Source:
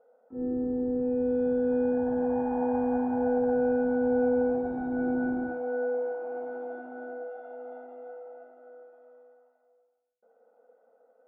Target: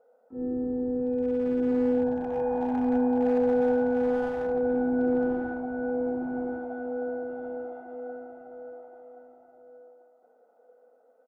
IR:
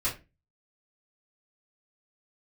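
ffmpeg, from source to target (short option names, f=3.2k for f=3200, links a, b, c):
-filter_complex "[0:a]asoftclip=type=hard:threshold=-21dB,asplit=2[a][b];[b]adelay=1076,lowpass=f=1.1k:p=1,volume=-4dB,asplit=2[c][d];[d]adelay=1076,lowpass=f=1.1k:p=1,volume=0.29,asplit=2[e][f];[f]adelay=1076,lowpass=f=1.1k:p=1,volume=0.29,asplit=2[g][h];[h]adelay=1076,lowpass=f=1.1k:p=1,volume=0.29[i];[c][e][g][i]amix=inputs=4:normalize=0[j];[a][j]amix=inputs=2:normalize=0"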